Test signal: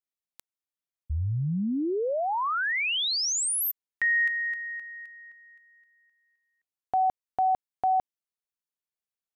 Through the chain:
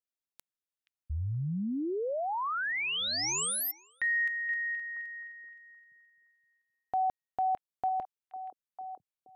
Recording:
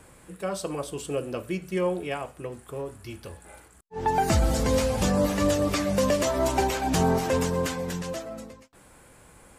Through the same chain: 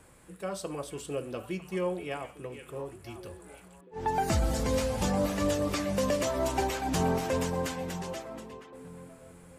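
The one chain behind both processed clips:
echo through a band-pass that steps 475 ms, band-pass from 2,500 Hz, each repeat −1.4 octaves, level −8 dB
level −5 dB

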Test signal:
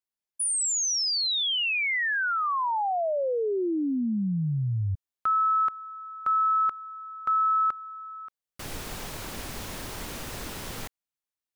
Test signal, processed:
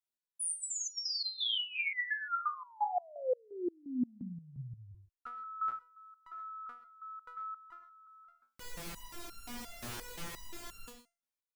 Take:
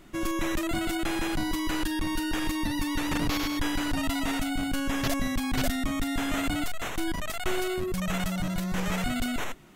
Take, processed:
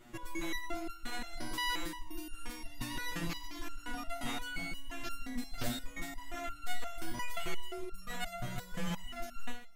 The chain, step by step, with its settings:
in parallel at −2 dB: downward compressor, threshold −35 dBFS
on the sum: reverb whose tail is shaped and stops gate 150 ms rising, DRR 11.5 dB
step-sequenced resonator 5.7 Hz 120–1,400 Hz
level +1.5 dB

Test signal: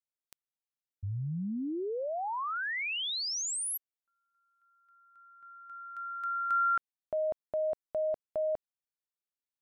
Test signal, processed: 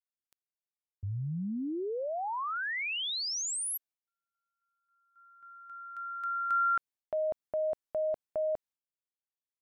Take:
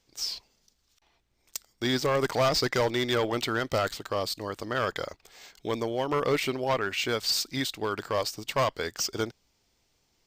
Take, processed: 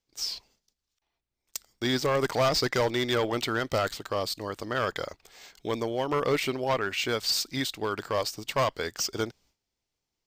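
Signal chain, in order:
downward expander −56 dBFS, range −14 dB

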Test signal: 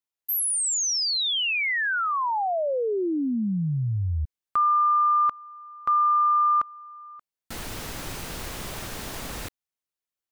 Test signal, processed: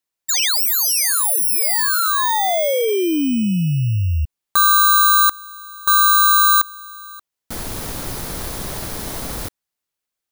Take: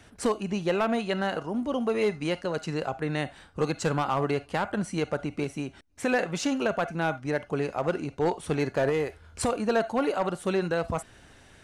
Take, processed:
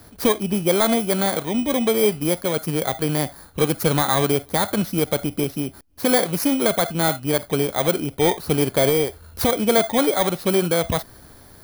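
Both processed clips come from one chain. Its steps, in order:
samples in bit-reversed order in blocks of 16 samples
level +7.5 dB

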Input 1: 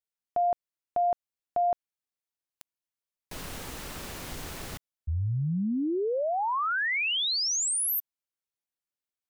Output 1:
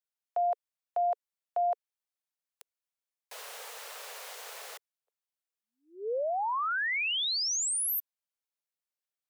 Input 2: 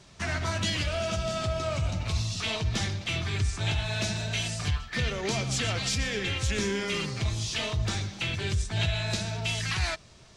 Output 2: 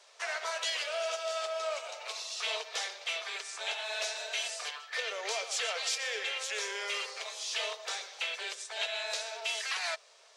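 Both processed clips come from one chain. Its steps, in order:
Butterworth high-pass 440 Hz 72 dB per octave
level −2.5 dB

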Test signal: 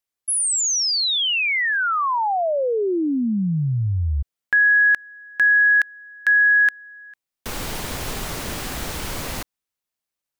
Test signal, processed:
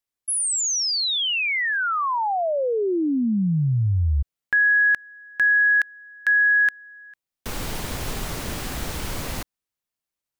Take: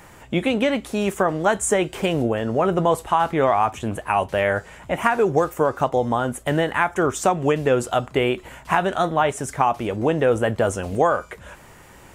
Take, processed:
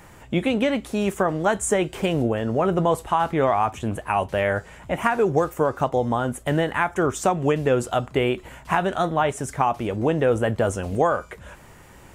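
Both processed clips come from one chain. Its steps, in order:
low-shelf EQ 260 Hz +4 dB
level −2.5 dB

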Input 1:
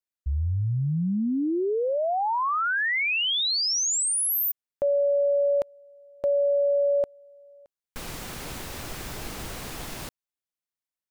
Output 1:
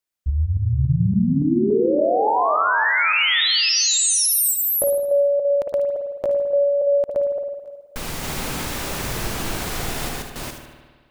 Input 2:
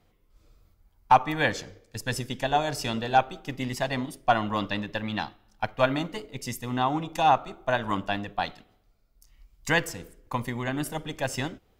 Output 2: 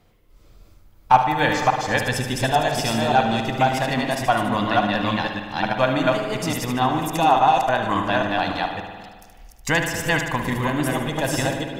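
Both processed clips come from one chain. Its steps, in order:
delay that plays each chunk backwards 284 ms, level −1 dB
in parallel at +1 dB: downward compressor, threshold −29 dBFS
on the sum: delay with a high-pass on its return 75 ms, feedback 41%, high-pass 4,300 Hz, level −6 dB
spring reverb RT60 1.5 s, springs 53 ms, chirp 45 ms, DRR 4.5 dB

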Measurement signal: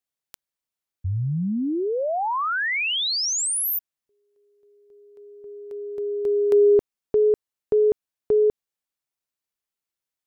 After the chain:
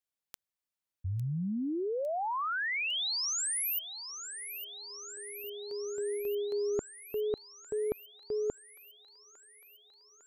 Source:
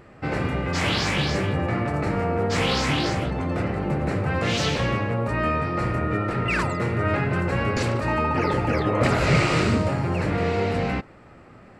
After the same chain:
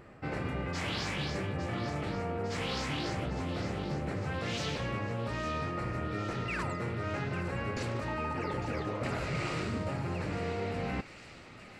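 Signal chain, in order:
reversed playback
downward compressor, threshold −27 dBFS
reversed playback
delay with a high-pass on its return 854 ms, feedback 73%, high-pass 2,200 Hz, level −10 dB
level −4.5 dB

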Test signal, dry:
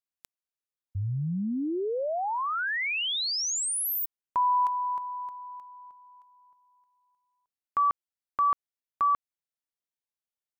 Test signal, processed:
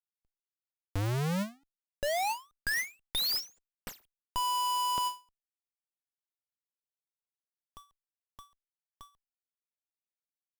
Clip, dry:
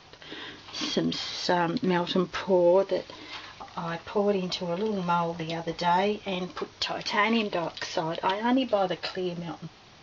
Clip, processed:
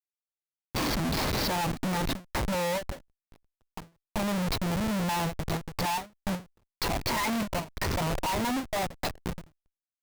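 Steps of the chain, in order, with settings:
phaser with its sweep stopped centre 2,100 Hz, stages 8
comparator with hysteresis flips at −33 dBFS
every ending faded ahead of time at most 220 dB per second
level +4 dB

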